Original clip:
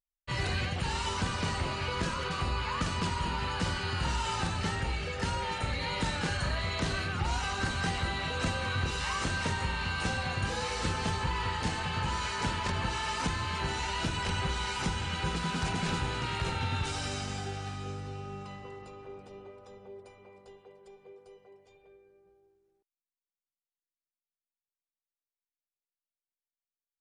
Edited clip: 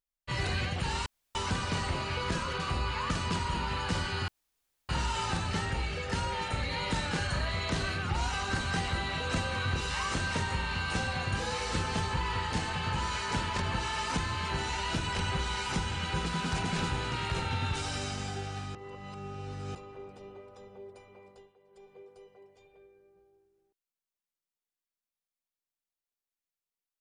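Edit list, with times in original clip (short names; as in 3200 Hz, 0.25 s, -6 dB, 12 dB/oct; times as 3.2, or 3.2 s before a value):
1.06 insert room tone 0.29 s
3.99 insert room tone 0.61 s
17.85–18.85 reverse
20.4–20.98 dip -11.5 dB, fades 0.27 s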